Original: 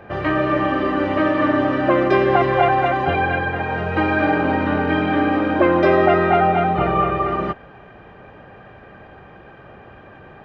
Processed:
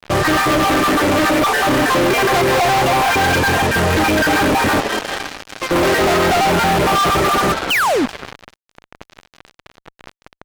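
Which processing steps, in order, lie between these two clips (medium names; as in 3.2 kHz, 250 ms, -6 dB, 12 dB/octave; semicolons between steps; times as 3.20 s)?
random holes in the spectrogram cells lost 27%; 4.80–5.71 s: differentiator; 7.70–8.06 s: painted sound fall 220–3300 Hz -27 dBFS; frequency-shifting echo 189 ms, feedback 51%, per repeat +130 Hz, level -14.5 dB; fuzz box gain 36 dB, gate -35 dBFS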